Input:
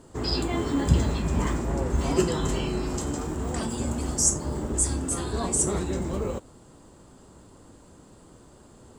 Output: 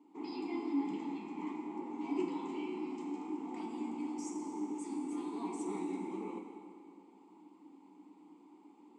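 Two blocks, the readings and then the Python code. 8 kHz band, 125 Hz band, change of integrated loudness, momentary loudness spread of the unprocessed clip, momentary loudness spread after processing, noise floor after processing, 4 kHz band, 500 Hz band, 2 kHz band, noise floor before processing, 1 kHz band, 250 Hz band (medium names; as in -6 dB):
-28.5 dB, under -30 dB, -13.5 dB, 8 LU, 22 LU, -61 dBFS, -22.5 dB, -13.5 dB, -15.0 dB, -52 dBFS, -9.5 dB, -7.5 dB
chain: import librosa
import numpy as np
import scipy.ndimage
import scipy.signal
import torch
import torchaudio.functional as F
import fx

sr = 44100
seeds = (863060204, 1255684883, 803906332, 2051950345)

y = fx.vowel_filter(x, sr, vowel='u')
y = fx.rider(y, sr, range_db=10, speed_s=2.0)
y = scipy.signal.sosfilt(scipy.signal.ellip(4, 1.0, 40, 180.0, 'highpass', fs=sr, output='sos'), y)
y = fx.low_shelf(y, sr, hz=310.0, db=-7.5)
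y = fx.rev_plate(y, sr, seeds[0], rt60_s=2.3, hf_ratio=0.85, predelay_ms=0, drr_db=2.5)
y = F.gain(torch.from_numpy(y), 1.0).numpy()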